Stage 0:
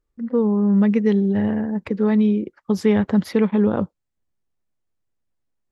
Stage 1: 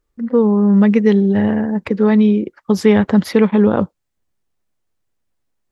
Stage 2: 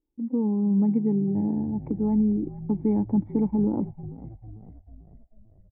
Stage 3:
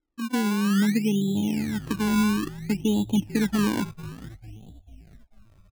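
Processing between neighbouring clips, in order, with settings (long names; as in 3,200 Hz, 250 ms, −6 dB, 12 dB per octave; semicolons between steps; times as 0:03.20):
low-shelf EQ 350 Hz −3.5 dB; level +7.5 dB
formant resonators in series u; dynamic equaliser 450 Hz, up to −6 dB, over −36 dBFS, Q 0.7; echo with shifted repeats 445 ms, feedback 59%, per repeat −51 Hz, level −16 dB; level +2 dB
sample-and-hold swept by an LFO 24×, swing 100% 0.58 Hz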